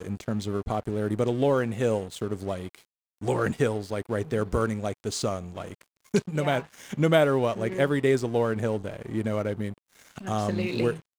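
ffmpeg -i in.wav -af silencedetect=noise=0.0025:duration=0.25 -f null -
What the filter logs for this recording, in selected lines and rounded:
silence_start: 2.85
silence_end: 3.18 | silence_duration: 0.34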